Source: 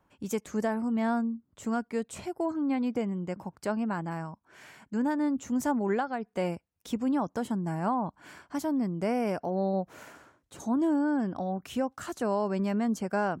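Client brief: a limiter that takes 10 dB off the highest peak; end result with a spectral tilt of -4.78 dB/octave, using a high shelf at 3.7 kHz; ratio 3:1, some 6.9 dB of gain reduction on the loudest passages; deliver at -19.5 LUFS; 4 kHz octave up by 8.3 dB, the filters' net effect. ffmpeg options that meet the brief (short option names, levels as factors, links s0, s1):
-af "highshelf=f=3700:g=5.5,equalizer=f=4000:t=o:g=7.5,acompressor=threshold=0.0224:ratio=3,volume=11.2,alimiter=limit=0.282:level=0:latency=1"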